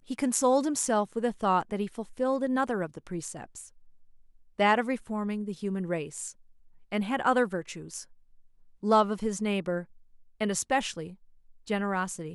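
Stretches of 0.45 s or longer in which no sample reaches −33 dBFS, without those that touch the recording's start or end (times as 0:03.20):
0:03.61–0:04.59
0:06.29–0:06.92
0:08.01–0:08.83
0:09.82–0:10.41
0:11.08–0:11.70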